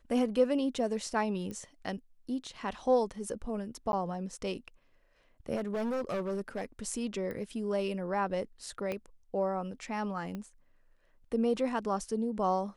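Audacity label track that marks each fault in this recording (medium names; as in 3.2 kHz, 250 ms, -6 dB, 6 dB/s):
1.510000	1.510000	pop -28 dBFS
3.920000	3.930000	dropout
5.550000	6.650000	clipped -30 dBFS
7.310000	7.310000	pop -28 dBFS
8.920000	8.920000	pop -22 dBFS
10.350000	10.350000	pop -27 dBFS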